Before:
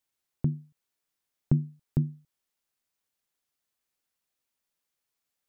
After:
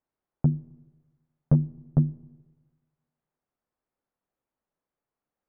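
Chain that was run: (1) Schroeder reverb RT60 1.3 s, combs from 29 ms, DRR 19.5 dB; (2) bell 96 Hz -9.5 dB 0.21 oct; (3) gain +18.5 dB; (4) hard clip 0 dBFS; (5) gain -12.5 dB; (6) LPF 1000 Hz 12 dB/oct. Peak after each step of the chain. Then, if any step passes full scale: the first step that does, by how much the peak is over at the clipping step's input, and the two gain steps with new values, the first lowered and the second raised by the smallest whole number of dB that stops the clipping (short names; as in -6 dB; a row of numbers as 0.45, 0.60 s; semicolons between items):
-11.0, -11.5, +7.0, 0.0, -12.5, -12.0 dBFS; step 3, 7.0 dB; step 3 +11.5 dB, step 5 -5.5 dB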